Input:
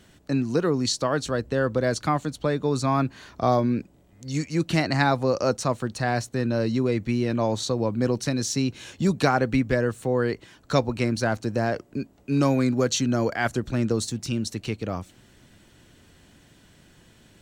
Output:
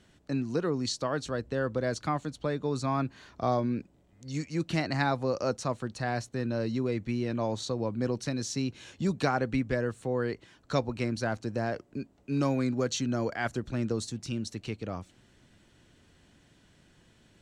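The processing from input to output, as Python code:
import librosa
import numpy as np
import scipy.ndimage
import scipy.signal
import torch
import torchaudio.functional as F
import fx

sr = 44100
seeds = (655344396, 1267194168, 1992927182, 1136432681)

y = scipy.signal.sosfilt(scipy.signal.bessel(2, 8600.0, 'lowpass', norm='mag', fs=sr, output='sos'), x)
y = y * librosa.db_to_amplitude(-6.5)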